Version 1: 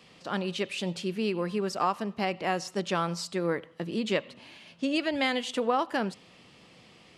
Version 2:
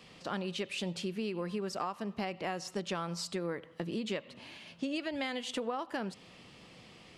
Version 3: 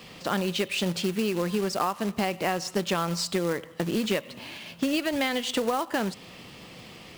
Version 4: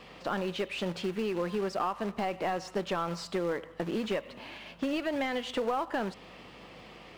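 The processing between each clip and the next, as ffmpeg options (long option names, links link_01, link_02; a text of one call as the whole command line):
ffmpeg -i in.wav -af "acompressor=threshold=-34dB:ratio=4,lowshelf=frequency=72:gain=6" out.wav
ffmpeg -i in.wav -af "acrusher=bits=3:mode=log:mix=0:aa=0.000001,volume=9dB" out.wav
ffmpeg -i in.wav -filter_complex "[0:a]asplit=2[link_01][link_02];[link_02]highpass=frequency=720:poles=1,volume=15dB,asoftclip=type=tanh:threshold=-11.5dB[link_03];[link_01][link_03]amix=inputs=2:normalize=0,lowpass=frequency=1000:poles=1,volume=-6dB,aeval=exprs='val(0)+0.00158*(sin(2*PI*50*n/s)+sin(2*PI*2*50*n/s)/2+sin(2*PI*3*50*n/s)/3+sin(2*PI*4*50*n/s)/4+sin(2*PI*5*50*n/s)/5)':channel_layout=same,volume=-6dB" out.wav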